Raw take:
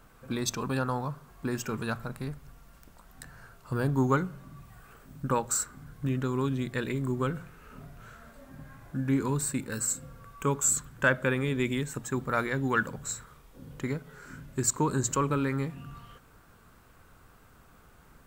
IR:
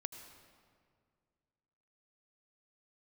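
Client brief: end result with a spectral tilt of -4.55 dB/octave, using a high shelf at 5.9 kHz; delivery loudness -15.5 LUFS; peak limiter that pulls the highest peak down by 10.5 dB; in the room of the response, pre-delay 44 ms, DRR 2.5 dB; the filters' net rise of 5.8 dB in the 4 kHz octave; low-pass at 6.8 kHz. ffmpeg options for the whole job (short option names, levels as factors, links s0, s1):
-filter_complex "[0:a]lowpass=6800,equalizer=f=4000:t=o:g=6,highshelf=f=5900:g=4,alimiter=limit=0.106:level=0:latency=1,asplit=2[s0][s1];[1:a]atrim=start_sample=2205,adelay=44[s2];[s1][s2]afir=irnorm=-1:irlink=0,volume=1[s3];[s0][s3]amix=inputs=2:normalize=0,volume=5.31"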